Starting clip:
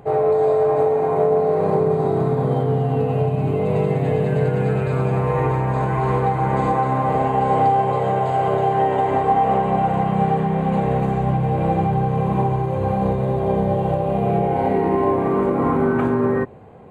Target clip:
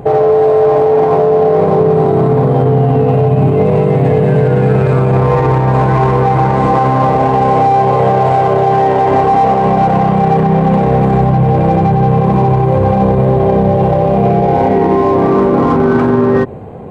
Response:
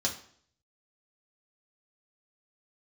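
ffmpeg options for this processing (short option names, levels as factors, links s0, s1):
-filter_complex "[0:a]asplit=2[s0][s1];[s1]adynamicsmooth=sensitivity=2.5:basefreq=790,volume=1[s2];[s0][s2]amix=inputs=2:normalize=0,alimiter=level_in=3.98:limit=0.891:release=50:level=0:latency=1,volume=0.794"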